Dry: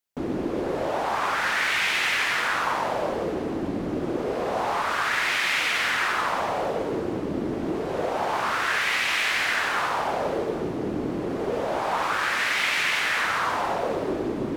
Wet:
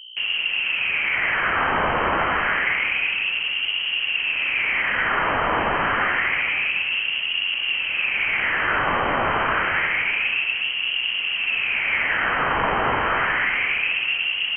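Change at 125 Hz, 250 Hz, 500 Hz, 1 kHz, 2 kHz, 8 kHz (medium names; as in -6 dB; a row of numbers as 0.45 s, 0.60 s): 0.0 dB, -5.5 dB, -3.0 dB, +2.0 dB, +5.5 dB, under -40 dB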